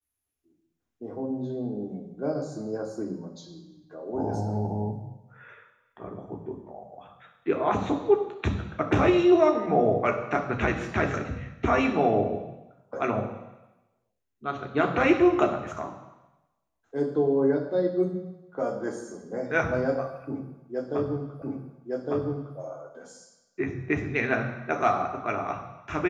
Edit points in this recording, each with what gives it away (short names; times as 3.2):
21.42 repeat of the last 1.16 s